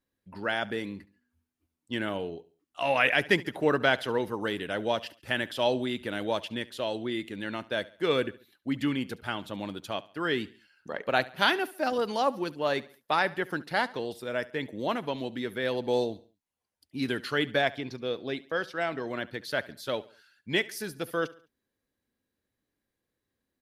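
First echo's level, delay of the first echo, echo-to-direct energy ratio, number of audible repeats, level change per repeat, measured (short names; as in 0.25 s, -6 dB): -20.0 dB, 70 ms, -19.0 dB, 2, -7.5 dB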